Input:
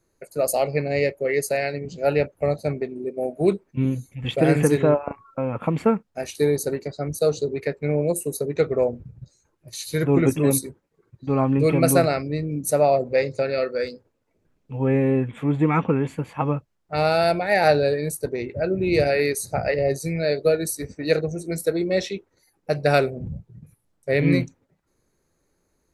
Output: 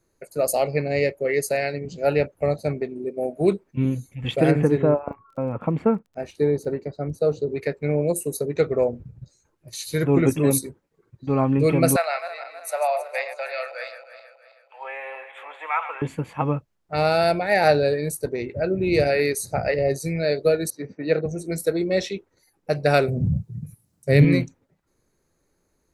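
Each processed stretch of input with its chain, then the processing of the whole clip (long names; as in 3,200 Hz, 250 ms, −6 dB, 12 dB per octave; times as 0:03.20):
0:04.50–0:07.48: low-pass filter 1,100 Hz 6 dB per octave + surface crackle 19 per second −46 dBFS
0:11.96–0:16.02: feedback delay that plays each chunk backwards 160 ms, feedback 63%, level −10.5 dB + Butterworth high-pass 660 Hz + high shelf with overshoot 4,100 Hz −6.5 dB, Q 1.5
0:20.70–0:21.26: high-pass filter 130 Hz 24 dB per octave + high-frequency loss of the air 270 metres
0:23.08–0:24.25: high-pass filter 97 Hz + bass and treble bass +14 dB, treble +10 dB + notch filter 3,400 Hz, Q 16
whole clip: no processing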